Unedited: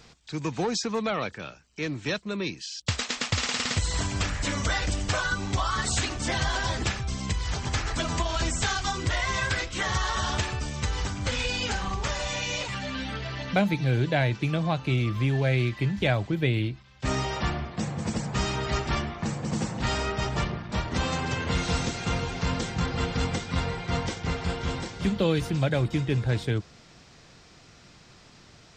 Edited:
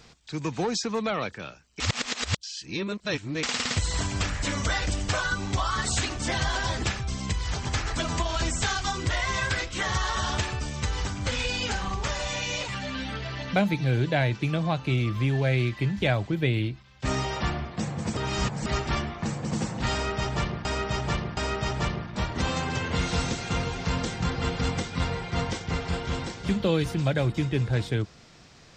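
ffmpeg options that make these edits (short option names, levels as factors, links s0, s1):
-filter_complex "[0:a]asplit=7[s0][s1][s2][s3][s4][s5][s6];[s0]atrim=end=1.802[s7];[s1]atrim=start=1.798:end=3.432,asetpts=PTS-STARTPTS,areverse[s8];[s2]atrim=start=3.428:end=18.172[s9];[s3]atrim=start=18.168:end=18.662,asetpts=PTS-STARTPTS,areverse[s10];[s4]atrim=start=18.658:end=20.652[s11];[s5]atrim=start=19.928:end=20.652[s12];[s6]atrim=start=19.928[s13];[s7][s8]acrossfade=d=0.004:c1=hsin:c2=hsin[s14];[s14][s9]acrossfade=d=0.004:c1=hsin:c2=hsin[s15];[s15][s10]acrossfade=d=0.004:c1=hsin:c2=hsin[s16];[s16][s11]acrossfade=d=0.004:c1=hsin:c2=hsin[s17];[s17][s12]acrossfade=d=0.004:c1=hsin:c2=hsin[s18];[s18][s13]acrossfade=d=0.004:c1=hsin:c2=hsin"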